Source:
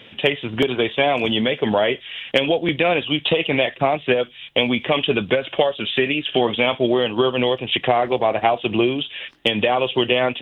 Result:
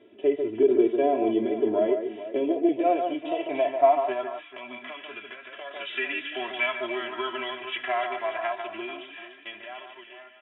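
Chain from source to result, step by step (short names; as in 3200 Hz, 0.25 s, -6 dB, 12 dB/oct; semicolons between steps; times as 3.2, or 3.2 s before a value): ending faded out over 2.47 s; echo with dull and thin repeats by turns 0.146 s, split 2000 Hz, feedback 67%, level -7 dB; band-pass sweep 400 Hz -> 1600 Hz, 2.38–5.25; 4.45–5.71 compressor 6:1, threshold -34 dBFS, peak gain reduction 11.5 dB; comb 3 ms, depth 99%; harmonic-percussive split percussive -10 dB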